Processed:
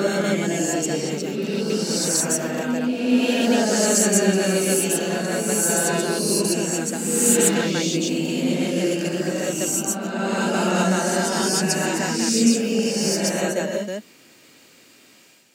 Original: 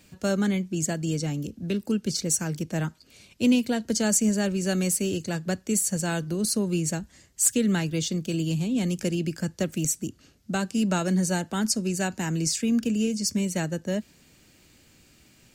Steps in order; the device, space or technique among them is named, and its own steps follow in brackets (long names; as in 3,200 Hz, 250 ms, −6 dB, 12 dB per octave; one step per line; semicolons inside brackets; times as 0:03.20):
ghost voice (reversed playback; convolution reverb RT60 2.7 s, pre-delay 116 ms, DRR −7.5 dB; reversed playback; high-pass filter 310 Hz 12 dB per octave)
level +1 dB